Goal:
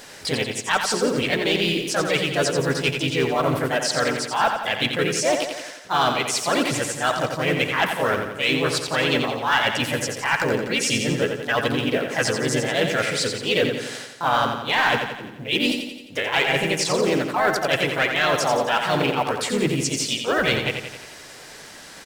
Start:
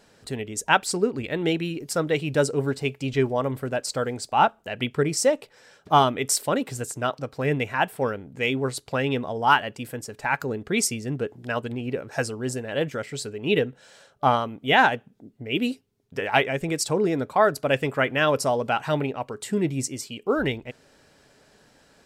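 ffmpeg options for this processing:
ffmpeg -i in.wav -filter_complex "[0:a]tiltshelf=frequency=760:gain=-5.5,asplit=3[link_01][link_02][link_03];[link_02]asetrate=35002,aresample=44100,atempo=1.25992,volume=-16dB[link_04];[link_03]asetrate=52444,aresample=44100,atempo=0.840896,volume=-2dB[link_05];[link_01][link_04][link_05]amix=inputs=3:normalize=0,areverse,acompressor=threshold=-29dB:ratio=5,areverse,asoftclip=type=tanh:threshold=-21dB,acrossover=split=7100[link_06][link_07];[link_07]acompressor=threshold=-52dB:ratio=4:attack=1:release=60[link_08];[link_06][link_08]amix=inputs=2:normalize=0,asplit=2[link_09][link_10];[link_10]acrusher=bits=5:mode=log:mix=0:aa=0.000001,volume=-4dB[link_11];[link_09][link_11]amix=inputs=2:normalize=0,aecho=1:1:87|174|261|348|435|522|609:0.473|0.26|0.143|0.0787|0.0433|0.0238|0.0131,volume=6.5dB" out.wav

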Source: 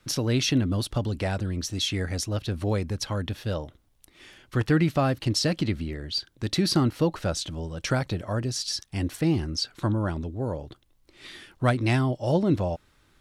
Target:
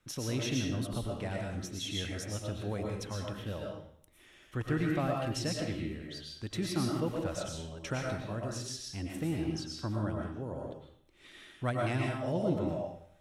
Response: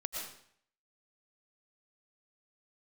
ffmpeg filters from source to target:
-filter_complex "[0:a]equalizer=frequency=4600:width=4.4:gain=-9[link_01];[1:a]atrim=start_sample=2205[link_02];[link_01][link_02]afir=irnorm=-1:irlink=0,volume=-8.5dB"

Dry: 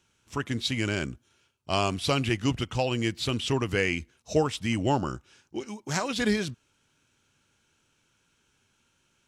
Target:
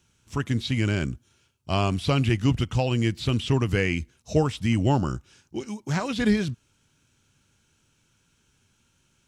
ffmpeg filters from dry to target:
ffmpeg -i in.wav -filter_complex "[0:a]bass=frequency=250:gain=8,treble=frequency=4000:gain=4,acrossover=split=3700[link_01][link_02];[link_02]acompressor=threshold=-41dB:ratio=4:attack=1:release=60[link_03];[link_01][link_03]amix=inputs=2:normalize=0" out.wav

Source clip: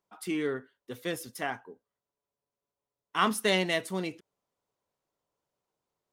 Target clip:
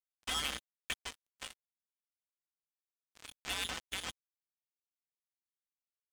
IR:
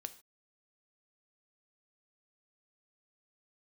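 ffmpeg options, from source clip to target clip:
-filter_complex "[0:a]agate=range=-7dB:threshold=-46dB:ratio=16:detection=peak,aeval=exprs='sgn(val(0))*max(abs(val(0))-0.00473,0)':channel_layout=same,acompressor=threshold=-40dB:ratio=12,acrossover=split=1900[link_01][link_02];[link_01]aeval=exprs='val(0)*(1-0.5/2+0.5/2*cos(2*PI*1.4*n/s))':channel_layout=same[link_03];[link_02]aeval=exprs='val(0)*(1-0.5/2-0.5/2*cos(2*PI*1.4*n/s))':channel_layout=same[link_04];[link_03][link_04]amix=inputs=2:normalize=0,aeval=exprs='(mod(112*val(0)+1,2)-1)/112':channel_layout=same,lowpass=frequency=3100:width_type=q:width=0.5098,lowpass=frequency=3100:width_type=q:width=0.6013,lowpass=frequency=3100:width_type=q:width=0.9,lowpass=frequency=3100:width_type=q:width=2.563,afreqshift=-3600,aeval=exprs='val(0)+0.000794*(sin(2*PI*60*n/s)+sin(2*PI*2*60*n/s)/2+sin(2*PI*3*60*n/s)/3+sin(2*PI*4*60*n/s)/4+sin(2*PI*5*60*n/s)/5)':channel_layout=same,aecho=1:1:3.9:0.8,asplit=3[link_05][link_06][link_07];[link_05]afade=type=out:start_time=1.09:duration=0.02[link_08];[link_06]flanger=delay=4.6:depth=4.5:regen=45:speed=1.3:shape=triangular,afade=type=in:start_time=1.09:duration=0.02,afade=type=out:start_time=3.47:duration=0.02[link_09];[link_07]afade=type=in:start_time=3.47:duration=0.02[link_10];[link_08][link_09][link_10]amix=inputs=3:normalize=0,acrusher=bits=6:mix=0:aa=0.5,volume=12dB"

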